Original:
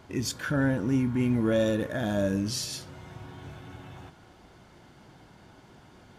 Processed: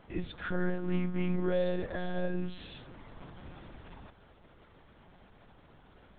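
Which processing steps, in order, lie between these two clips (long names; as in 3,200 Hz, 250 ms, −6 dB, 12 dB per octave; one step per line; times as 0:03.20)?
one-pitch LPC vocoder at 8 kHz 180 Hz
level −4.5 dB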